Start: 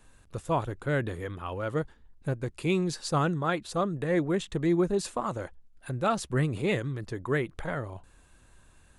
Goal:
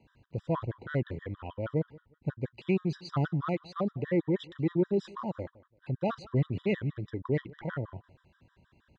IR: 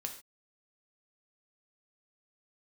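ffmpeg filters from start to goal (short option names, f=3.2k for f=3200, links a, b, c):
-filter_complex "[0:a]lowpass=f=4.4k:w=0.5412,lowpass=f=4.4k:w=1.3066,lowshelf=f=300:g=10,asplit=2[a][b];[b]asoftclip=type=tanh:threshold=-20.5dB,volume=-3dB[c];[a][c]amix=inputs=2:normalize=0,highpass=110,aecho=1:1:182|364:0.0794|0.023,afftfilt=real='re*gt(sin(2*PI*6.3*pts/sr)*(1-2*mod(floor(b*sr/1024/980),2)),0)':imag='im*gt(sin(2*PI*6.3*pts/sr)*(1-2*mod(floor(b*sr/1024/980),2)),0)':win_size=1024:overlap=0.75,volume=-7.5dB"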